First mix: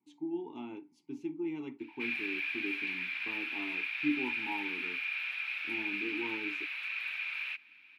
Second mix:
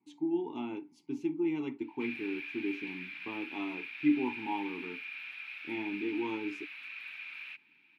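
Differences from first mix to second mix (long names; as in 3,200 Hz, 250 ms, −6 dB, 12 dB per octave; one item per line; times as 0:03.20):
speech +5.0 dB
background −7.0 dB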